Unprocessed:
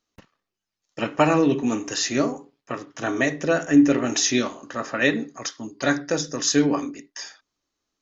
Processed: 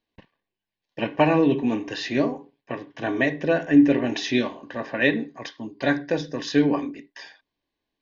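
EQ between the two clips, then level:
Butterworth band-reject 1,300 Hz, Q 3.8
low-pass filter 3,900 Hz 24 dB per octave
0.0 dB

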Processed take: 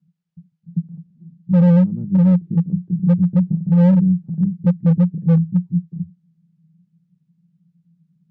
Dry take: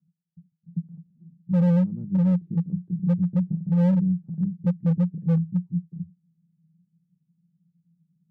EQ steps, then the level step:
high-frequency loss of the air 94 metres
+7.5 dB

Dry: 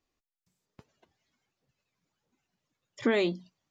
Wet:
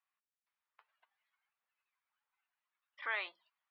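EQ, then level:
high-pass filter 1,000 Hz 24 dB per octave
linear-phase brick-wall low-pass 5,700 Hz
high-frequency loss of the air 500 metres
+2.0 dB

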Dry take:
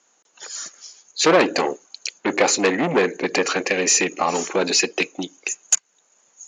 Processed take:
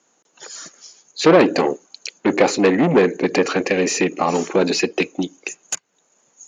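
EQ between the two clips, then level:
low-shelf EQ 490 Hz +10.5 dB
dynamic equaliser 7,000 Hz, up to −7 dB, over −33 dBFS, Q 1.4
−1.5 dB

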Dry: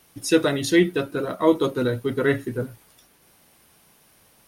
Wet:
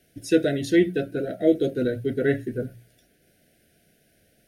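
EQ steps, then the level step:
elliptic band-stop filter 700–1,500 Hz, stop band 40 dB
high-shelf EQ 2,300 Hz −9.5 dB
mains-hum notches 60/120/180 Hz
0.0 dB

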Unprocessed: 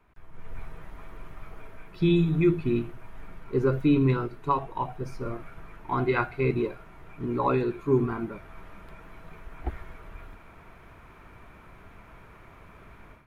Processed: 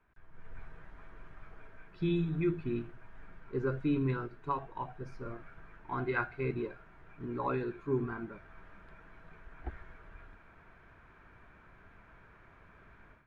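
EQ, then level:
high-frequency loss of the air 72 metres
parametric band 1,600 Hz +9 dB 0.3 octaves
−9.0 dB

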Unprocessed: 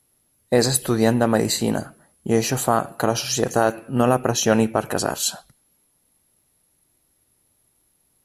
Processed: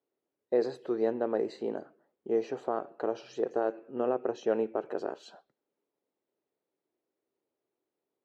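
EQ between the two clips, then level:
resonant band-pass 400 Hz, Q 2.6
high-frequency loss of the air 180 metres
spectral tilt +4 dB per octave
0.0 dB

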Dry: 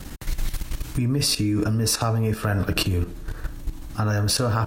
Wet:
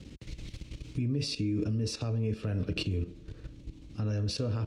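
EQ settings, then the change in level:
high-pass filter 59 Hz
high-frequency loss of the air 120 metres
flat-topped bell 1,100 Hz −13 dB
−7.5 dB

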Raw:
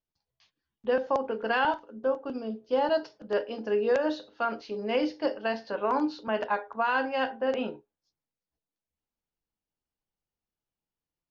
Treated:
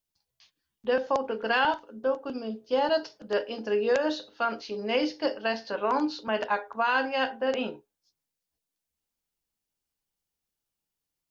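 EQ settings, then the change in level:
high-shelf EQ 2,900 Hz +9.5 dB
0.0 dB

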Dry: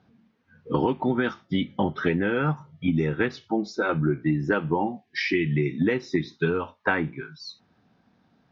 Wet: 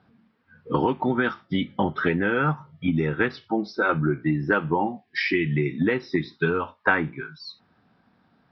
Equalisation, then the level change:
Butterworth low-pass 5,500 Hz 96 dB per octave
parametric band 1,300 Hz +5 dB 1.2 octaves
0.0 dB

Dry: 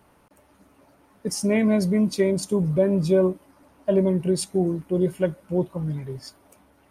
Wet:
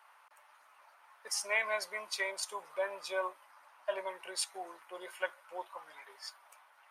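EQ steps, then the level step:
high-pass filter 950 Hz 24 dB per octave
high-shelf EQ 3,500 Hz −12 dB
+4.5 dB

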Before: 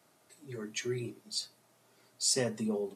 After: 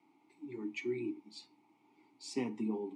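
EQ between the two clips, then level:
formant filter u
+11.0 dB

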